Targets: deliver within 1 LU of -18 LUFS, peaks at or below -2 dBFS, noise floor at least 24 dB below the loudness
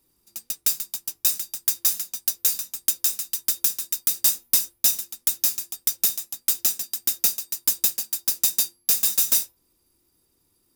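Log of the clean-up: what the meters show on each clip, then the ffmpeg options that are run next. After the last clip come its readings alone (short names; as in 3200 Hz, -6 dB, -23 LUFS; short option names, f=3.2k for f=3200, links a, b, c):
loudness -22.0 LUFS; peak -1.0 dBFS; loudness target -18.0 LUFS
-> -af "volume=4dB,alimiter=limit=-2dB:level=0:latency=1"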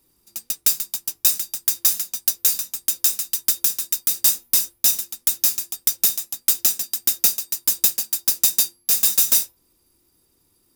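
loudness -18.5 LUFS; peak -2.0 dBFS; noise floor -65 dBFS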